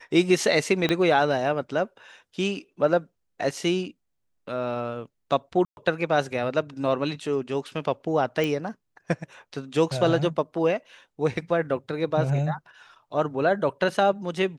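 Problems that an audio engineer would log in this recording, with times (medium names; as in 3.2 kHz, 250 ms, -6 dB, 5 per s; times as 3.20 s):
0.89 s: pop -11 dBFS
5.65–5.77 s: dropout 121 ms
8.44 s: pop -14 dBFS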